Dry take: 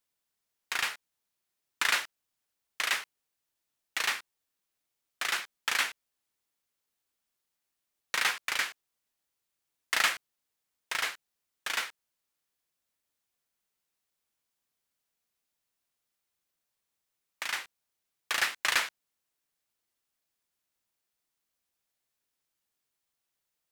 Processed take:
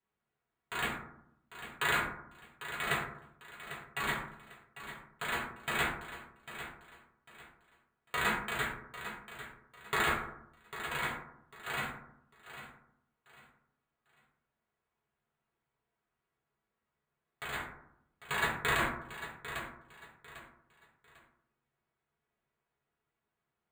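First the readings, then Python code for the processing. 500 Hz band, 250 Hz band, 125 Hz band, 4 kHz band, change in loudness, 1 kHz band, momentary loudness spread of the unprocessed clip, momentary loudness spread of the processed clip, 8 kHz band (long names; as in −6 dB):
+7.0 dB, +12.5 dB, can't be measured, −8.0 dB, −5.5 dB, +1.5 dB, 12 LU, 22 LU, −9.5 dB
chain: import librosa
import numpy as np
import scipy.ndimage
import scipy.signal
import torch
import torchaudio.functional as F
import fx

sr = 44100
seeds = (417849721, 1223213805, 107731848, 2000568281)

p1 = fx.cheby_harmonics(x, sr, harmonics=(3,), levels_db=(-13,), full_scale_db=-10.0)
p2 = np.repeat(p1[::8], 8)[:len(p1)]
p3 = fx.high_shelf(p2, sr, hz=4300.0, db=-5.5)
p4 = p3 + fx.echo_feedback(p3, sr, ms=798, feedback_pct=29, wet_db=-12, dry=0)
p5 = fx.rev_fdn(p4, sr, rt60_s=0.73, lf_ratio=1.35, hf_ratio=0.35, size_ms=42.0, drr_db=-7.0)
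p6 = fx.over_compress(p5, sr, threshold_db=-27.0, ratio=-1.0)
y = F.gain(torch.from_numpy(p6), -1.0).numpy()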